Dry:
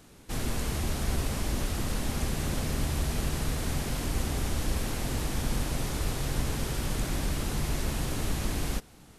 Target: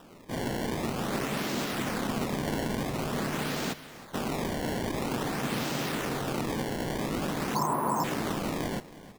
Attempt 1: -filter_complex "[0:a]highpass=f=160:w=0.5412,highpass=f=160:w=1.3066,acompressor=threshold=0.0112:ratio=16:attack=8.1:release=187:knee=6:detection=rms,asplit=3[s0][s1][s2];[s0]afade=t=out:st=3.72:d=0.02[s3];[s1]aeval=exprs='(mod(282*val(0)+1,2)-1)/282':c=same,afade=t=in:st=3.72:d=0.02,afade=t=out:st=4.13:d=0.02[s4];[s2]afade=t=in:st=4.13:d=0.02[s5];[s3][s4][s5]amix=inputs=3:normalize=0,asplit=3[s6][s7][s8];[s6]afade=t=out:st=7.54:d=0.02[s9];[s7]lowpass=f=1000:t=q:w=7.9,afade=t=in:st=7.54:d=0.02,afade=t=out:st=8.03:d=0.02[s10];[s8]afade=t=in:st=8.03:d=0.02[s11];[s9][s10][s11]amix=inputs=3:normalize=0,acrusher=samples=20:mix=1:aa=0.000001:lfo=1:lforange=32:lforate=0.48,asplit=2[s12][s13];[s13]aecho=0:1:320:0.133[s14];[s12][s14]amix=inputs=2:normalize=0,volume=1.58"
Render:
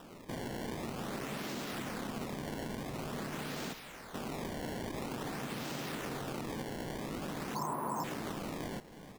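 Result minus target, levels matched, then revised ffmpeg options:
compression: peak gain reduction +11.5 dB
-filter_complex "[0:a]highpass=f=160:w=0.5412,highpass=f=160:w=1.3066,asplit=3[s0][s1][s2];[s0]afade=t=out:st=3.72:d=0.02[s3];[s1]aeval=exprs='(mod(282*val(0)+1,2)-1)/282':c=same,afade=t=in:st=3.72:d=0.02,afade=t=out:st=4.13:d=0.02[s4];[s2]afade=t=in:st=4.13:d=0.02[s5];[s3][s4][s5]amix=inputs=3:normalize=0,asplit=3[s6][s7][s8];[s6]afade=t=out:st=7.54:d=0.02[s9];[s7]lowpass=f=1000:t=q:w=7.9,afade=t=in:st=7.54:d=0.02,afade=t=out:st=8.03:d=0.02[s10];[s8]afade=t=in:st=8.03:d=0.02[s11];[s9][s10][s11]amix=inputs=3:normalize=0,acrusher=samples=20:mix=1:aa=0.000001:lfo=1:lforange=32:lforate=0.48,asplit=2[s12][s13];[s13]aecho=0:1:320:0.133[s14];[s12][s14]amix=inputs=2:normalize=0,volume=1.58"

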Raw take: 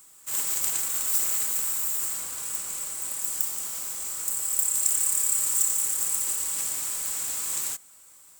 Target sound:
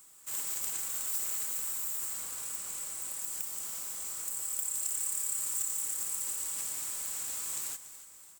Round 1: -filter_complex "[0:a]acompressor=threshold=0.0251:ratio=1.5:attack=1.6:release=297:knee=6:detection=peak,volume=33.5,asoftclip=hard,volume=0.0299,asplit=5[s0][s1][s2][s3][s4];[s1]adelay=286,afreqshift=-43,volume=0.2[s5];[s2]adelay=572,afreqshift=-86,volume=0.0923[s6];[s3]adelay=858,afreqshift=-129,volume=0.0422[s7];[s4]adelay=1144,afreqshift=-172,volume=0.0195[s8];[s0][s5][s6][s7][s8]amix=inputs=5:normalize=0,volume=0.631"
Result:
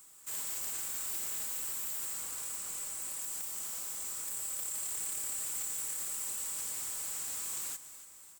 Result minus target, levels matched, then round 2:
overload inside the chain: distortion +17 dB
-filter_complex "[0:a]acompressor=threshold=0.0251:ratio=1.5:attack=1.6:release=297:knee=6:detection=peak,volume=8.91,asoftclip=hard,volume=0.112,asplit=5[s0][s1][s2][s3][s4];[s1]adelay=286,afreqshift=-43,volume=0.2[s5];[s2]adelay=572,afreqshift=-86,volume=0.0923[s6];[s3]adelay=858,afreqshift=-129,volume=0.0422[s7];[s4]adelay=1144,afreqshift=-172,volume=0.0195[s8];[s0][s5][s6][s7][s8]amix=inputs=5:normalize=0,volume=0.631"

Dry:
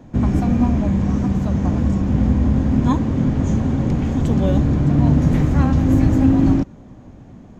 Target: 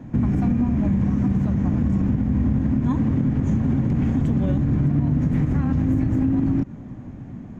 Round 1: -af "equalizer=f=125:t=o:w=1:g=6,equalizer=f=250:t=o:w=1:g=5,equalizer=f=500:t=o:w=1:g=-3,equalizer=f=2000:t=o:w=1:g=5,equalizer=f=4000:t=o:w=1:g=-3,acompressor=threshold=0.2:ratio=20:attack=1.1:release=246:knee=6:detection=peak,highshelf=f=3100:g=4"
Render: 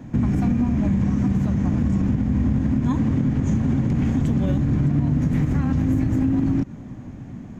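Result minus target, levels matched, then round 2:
8 kHz band +7.5 dB
-af "equalizer=f=125:t=o:w=1:g=6,equalizer=f=250:t=o:w=1:g=5,equalizer=f=500:t=o:w=1:g=-3,equalizer=f=2000:t=o:w=1:g=5,equalizer=f=4000:t=o:w=1:g=-3,acompressor=threshold=0.2:ratio=20:attack=1.1:release=246:knee=6:detection=peak,highshelf=f=3100:g=-5"

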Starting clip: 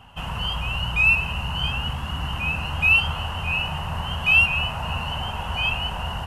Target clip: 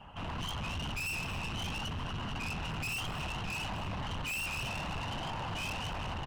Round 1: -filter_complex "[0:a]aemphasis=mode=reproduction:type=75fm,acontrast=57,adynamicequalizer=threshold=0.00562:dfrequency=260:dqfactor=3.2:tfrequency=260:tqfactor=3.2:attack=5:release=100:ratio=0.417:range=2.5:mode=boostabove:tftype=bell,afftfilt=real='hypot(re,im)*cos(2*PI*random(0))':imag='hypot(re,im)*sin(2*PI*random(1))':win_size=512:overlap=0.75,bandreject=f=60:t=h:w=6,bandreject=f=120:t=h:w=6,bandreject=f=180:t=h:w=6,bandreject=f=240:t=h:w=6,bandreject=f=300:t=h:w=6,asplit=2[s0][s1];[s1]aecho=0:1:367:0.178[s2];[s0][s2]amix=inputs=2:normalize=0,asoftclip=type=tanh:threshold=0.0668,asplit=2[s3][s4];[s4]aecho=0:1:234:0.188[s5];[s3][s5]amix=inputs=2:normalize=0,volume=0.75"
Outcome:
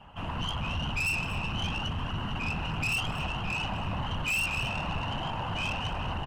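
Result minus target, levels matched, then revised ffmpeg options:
saturation: distortion -5 dB
-filter_complex "[0:a]aemphasis=mode=reproduction:type=75fm,acontrast=57,adynamicequalizer=threshold=0.00562:dfrequency=260:dqfactor=3.2:tfrequency=260:tqfactor=3.2:attack=5:release=100:ratio=0.417:range=2.5:mode=boostabove:tftype=bell,afftfilt=real='hypot(re,im)*cos(2*PI*random(0))':imag='hypot(re,im)*sin(2*PI*random(1))':win_size=512:overlap=0.75,bandreject=f=60:t=h:w=6,bandreject=f=120:t=h:w=6,bandreject=f=180:t=h:w=6,bandreject=f=240:t=h:w=6,bandreject=f=300:t=h:w=6,asplit=2[s0][s1];[s1]aecho=0:1:367:0.178[s2];[s0][s2]amix=inputs=2:normalize=0,asoftclip=type=tanh:threshold=0.0237,asplit=2[s3][s4];[s4]aecho=0:1:234:0.188[s5];[s3][s5]amix=inputs=2:normalize=0,volume=0.75"

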